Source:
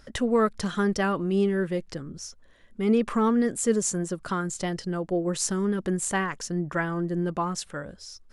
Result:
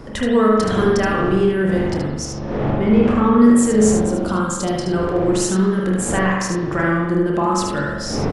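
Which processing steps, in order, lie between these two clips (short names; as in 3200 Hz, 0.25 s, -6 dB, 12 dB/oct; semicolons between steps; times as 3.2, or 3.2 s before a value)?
wind noise 440 Hz -37 dBFS; recorder AGC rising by 12 dB/s; 3.93–4.82 bell 1900 Hz -9 dB 0.81 oct; in parallel at -2.5 dB: limiter -22 dBFS, peak gain reduction 11 dB; 2.25–3.35 on the sum: air absorption 100 m; on a send: early reflections 28 ms -11.5 dB, 75 ms -5.5 dB; on the sum: spring tank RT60 1.1 s, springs 42 ms, chirp 60 ms, DRR -1.5 dB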